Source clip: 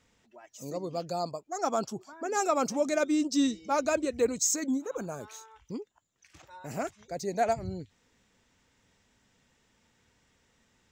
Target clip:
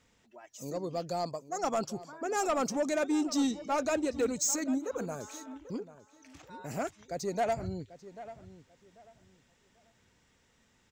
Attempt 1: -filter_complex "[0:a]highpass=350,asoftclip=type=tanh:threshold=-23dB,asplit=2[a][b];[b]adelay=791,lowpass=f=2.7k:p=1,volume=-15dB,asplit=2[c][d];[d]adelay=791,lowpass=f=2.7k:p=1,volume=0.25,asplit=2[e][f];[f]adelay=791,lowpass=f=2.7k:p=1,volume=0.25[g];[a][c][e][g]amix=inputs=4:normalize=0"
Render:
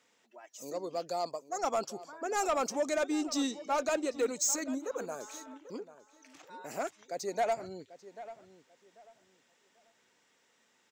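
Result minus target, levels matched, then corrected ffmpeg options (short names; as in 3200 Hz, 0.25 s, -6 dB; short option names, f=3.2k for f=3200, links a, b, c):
250 Hz band -3.5 dB
-filter_complex "[0:a]asoftclip=type=tanh:threshold=-23dB,asplit=2[a][b];[b]adelay=791,lowpass=f=2.7k:p=1,volume=-15dB,asplit=2[c][d];[d]adelay=791,lowpass=f=2.7k:p=1,volume=0.25,asplit=2[e][f];[f]adelay=791,lowpass=f=2.7k:p=1,volume=0.25[g];[a][c][e][g]amix=inputs=4:normalize=0"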